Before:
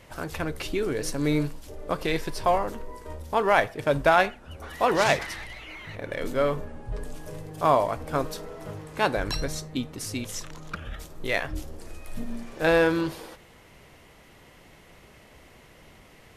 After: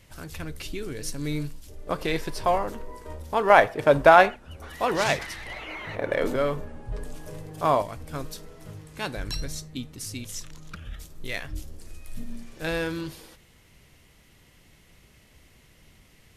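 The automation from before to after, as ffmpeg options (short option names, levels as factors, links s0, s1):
-af "asetnsamples=n=441:p=0,asendcmd='1.87 equalizer g -0.5;3.5 equalizer g 6;4.36 equalizer g -3;5.46 equalizer g 8.5;6.36 equalizer g -1.5;7.82 equalizer g -11',equalizer=f=730:t=o:w=3:g=-11"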